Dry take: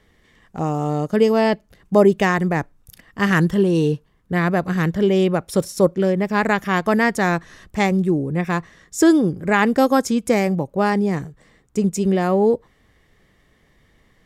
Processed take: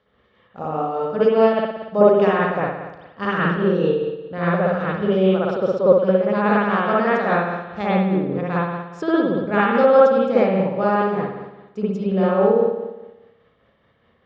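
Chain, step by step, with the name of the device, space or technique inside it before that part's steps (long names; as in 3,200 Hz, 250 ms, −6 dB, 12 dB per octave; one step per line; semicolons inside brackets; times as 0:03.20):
combo amplifier with spring reverb and tremolo (spring reverb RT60 1.1 s, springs 58 ms, chirp 45 ms, DRR −7.5 dB; amplitude tremolo 4.9 Hz, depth 33%; loudspeaker in its box 100–4,200 Hz, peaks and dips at 150 Hz −8 dB, 320 Hz −7 dB, 530 Hz +7 dB, 1,300 Hz +6 dB, 2,000 Hz −8 dB)
level −7 dB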